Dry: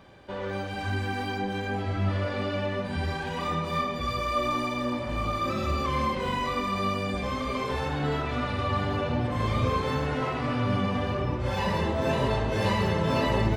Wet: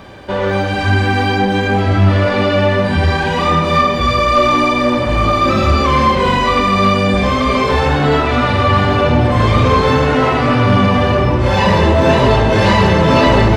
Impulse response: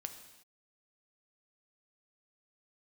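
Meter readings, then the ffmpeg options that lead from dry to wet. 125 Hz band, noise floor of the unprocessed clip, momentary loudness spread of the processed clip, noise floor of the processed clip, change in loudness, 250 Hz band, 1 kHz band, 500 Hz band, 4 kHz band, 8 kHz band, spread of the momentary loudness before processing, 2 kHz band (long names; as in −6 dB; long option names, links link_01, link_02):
+15.0 dB, −33 dBFS, 3 LU, −17 dBFS, +15.5 dB, +15.0 dB, +16.0 dB, +16.0 dB, +15.5 dB, +13.5 dB, 5 LU, +16.0 dB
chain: -filter_complex "[0:a]aeval=exprs='0.266*sin(PI/2*2*val(0)/0.266)':channel_layout=same,acrossover=split=7600[link_01][link_02];[link_02]acompressor=threshold=-58dB:ratio=4:attack=1:release=60[link_03];[link_01][link_03]amix=inputs=2:normalize=0,asplit=2[link_04][link_05];[1:a]atrim=start_sample=2205[link_06];[link_05][link_06]afir=irnorm=-1:irlink=0,volume=8.5dB[link_07];[link_04][link_07]amix=inputs=2:normalize=0,volume=-2.5dB"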